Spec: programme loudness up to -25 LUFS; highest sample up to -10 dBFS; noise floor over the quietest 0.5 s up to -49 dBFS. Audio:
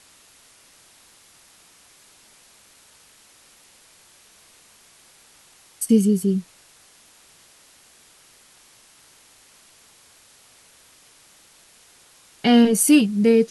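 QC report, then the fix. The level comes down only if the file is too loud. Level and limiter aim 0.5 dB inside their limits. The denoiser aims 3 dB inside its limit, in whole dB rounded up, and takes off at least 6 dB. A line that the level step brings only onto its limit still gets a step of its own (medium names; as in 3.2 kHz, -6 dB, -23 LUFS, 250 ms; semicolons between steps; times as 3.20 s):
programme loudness -18.0 LUFS: fail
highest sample -4.5 dBFS: fail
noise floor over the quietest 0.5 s -53 dBFS: pass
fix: trim -7.5 dB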